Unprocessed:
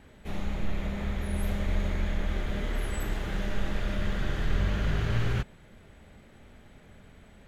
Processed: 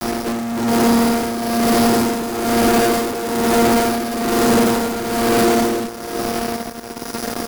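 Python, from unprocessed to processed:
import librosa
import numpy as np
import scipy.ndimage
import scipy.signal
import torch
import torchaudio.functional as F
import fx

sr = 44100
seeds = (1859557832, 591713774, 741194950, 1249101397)

p1 = fx.chord_vocoder(x, sr, chord='bare fifth', root=58)
p2 = np.clip(10.0 ** (34.0 / 20.0) * p1, -1.0, 1.0) / 10.0 ** (34.0 / 20.0)
p3 = fx.low_shelf(p2, sr, hz=430.0, db=8.0)
p4 = fx.sample_hold(p3, sr, seeds[0], rate_hz=5300.0, jitter_pct=0)
p5 = scipy.signal.sosfilt(scipy.signal.butter(2, 320.0, 'highpass', fs=sr, output='sos'), p4)
p6 = fx.peak_eq(p5, sr, hz=2400.0, db=-13.5, octaves=1.4)
p7 = p6 + 10.0 ** (-6.0 / 20.0) * np.pad(p6, (int(431 * sr / 1000.0), 0))[:len(p6)]
p8 = fx.fuzz(p7, sr, gain_db=58.0, gate_db=-55.0)
p9 = p8 + fx.echo_single(p8, sr, ms=408, db=-10.0, dry=0)
y = p9 * (1.0 - 0.67 / 2.0 + 0.67 / 2.0 * np.cos(2.0 * np.pi * 1.1 * (np.arange(len(p9)) / sr)))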